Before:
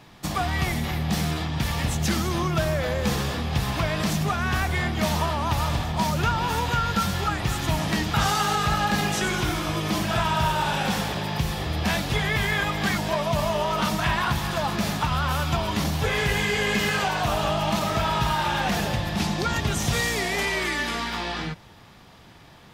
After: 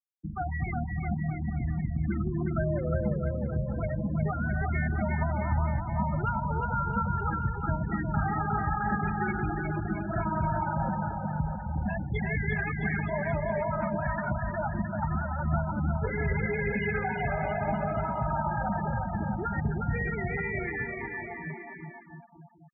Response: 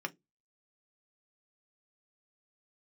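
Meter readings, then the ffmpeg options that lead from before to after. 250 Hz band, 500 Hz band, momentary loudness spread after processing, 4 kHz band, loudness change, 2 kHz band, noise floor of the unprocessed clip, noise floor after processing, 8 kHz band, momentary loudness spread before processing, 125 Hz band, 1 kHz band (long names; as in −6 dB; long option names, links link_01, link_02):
−4.0 dB, −5.0 dB, 4 LU, below −30 dB, −6.0 dB, −7.5 dB, −49 dBFS, −44 dBFS, below −40 dB, 4 LU, −3.0 dB, −6.5 dB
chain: -filter_complex "[0:a]acrossover=split=3000[link_01][link_02];[link_02]acompressor=threshold=-41dB:ratio=4:attack=1:release=60[link_03];[link_01][link_03]amix=inputs=2:normalize=0,afftfilt=real='re*gte(hypot(re,im),0.158)':imag='im*gte(hypot(re,im),0.158)':win_size=1024:overlap=0.75,aexciter=amount=5.3:drive=7.6:freq=7200,asuperstop=centerf=1100:order=4:qfactor=4.2,asplit=2[link_04][link_05];[link_05]aecho=0:1:360|666|926.1|1147|1335:0.631|0.398|0.251|0.158|0.1[link_06];[link_04][link_06]amix=inputs=2:normalize=0,volume=-5dB"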